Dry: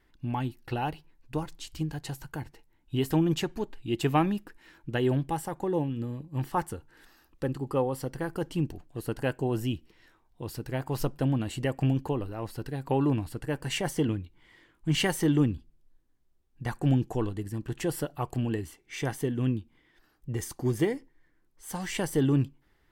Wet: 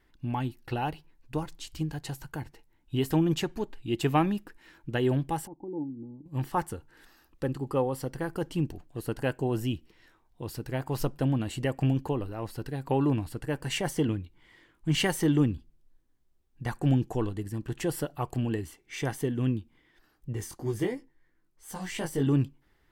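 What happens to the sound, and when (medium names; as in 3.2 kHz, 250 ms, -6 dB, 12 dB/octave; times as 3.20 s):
5.47–6.26 s: cascade formant filter u
20.33–22.27 s: chorus 2.9 Hz, delay 18 ms, depth 3.8 ms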